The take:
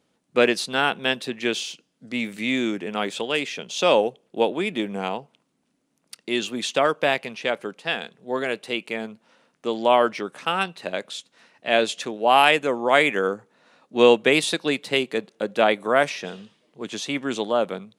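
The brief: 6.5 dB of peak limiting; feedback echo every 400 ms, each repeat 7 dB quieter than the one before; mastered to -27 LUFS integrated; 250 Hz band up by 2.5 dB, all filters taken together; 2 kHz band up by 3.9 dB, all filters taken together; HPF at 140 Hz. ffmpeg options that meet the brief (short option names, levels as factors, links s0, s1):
-af "highpass=140,equalizer=f=250:t=o:g=3.5,equalizer=f=2000:t=o:g=5,alimiter=limit=0.473:level=0:latency=1,aecho=1:1:400|800|1200|1600|2000:0.447|0.201|0.0905|0.0407|0.0183,volume=0.562"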